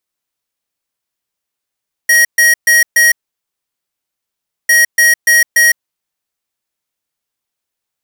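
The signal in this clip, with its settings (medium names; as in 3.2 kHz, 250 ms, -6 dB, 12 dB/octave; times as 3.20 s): beep pattern square 1.89 kHz, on 0.16 s, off 0.13 s, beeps 4, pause 1.57 s, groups 2, -8 dBFS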